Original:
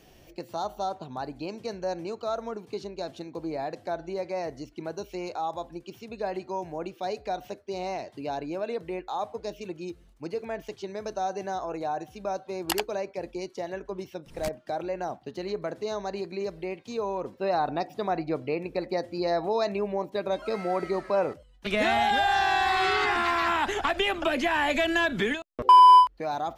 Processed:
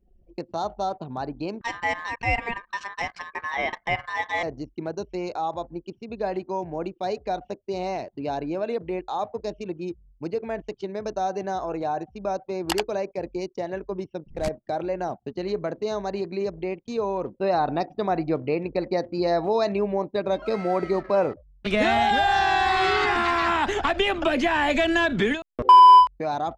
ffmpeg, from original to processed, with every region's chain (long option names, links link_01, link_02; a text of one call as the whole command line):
ffmpeg -i in.wav -filter_complex "[0:a]asettb=1/sr,asplit=3[link_01][link_02][link_03];[link_01]atrim=end=1.614[link_04];[link_02]atrim=start=1.61:end=4.43,asetpts=PTS-STARTPTS,afade=type=in:duration=0.004:curve=qsin,afade=type=out:start_time=2.816:duration=0.004:curve=qsin,equalizer=frequency=1600:width=0.43:gain=9.5,aeval=exprs='val(0)*sin(2*PI*1400*n/s)':channel_layout=same[link_05];[link_03]atrim=start=4.426[link_06];[link_04][link_05]acrossfade=duration=0.004:curve1=hsin:curve2=qsin[link_07];[link_07][link_06]acrossfade=duration=0.004:curve1=qsin:curve2=hsin,anlmdn=0.0631,lowpass=8600,lowshelf=frequency=450:gain=4.5,volume=2dB" out.wav